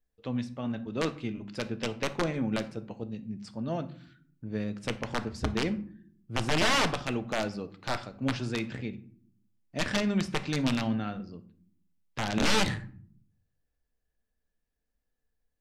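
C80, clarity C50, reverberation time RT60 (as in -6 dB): 20.0 dB, 15.5 dB, 0.60 s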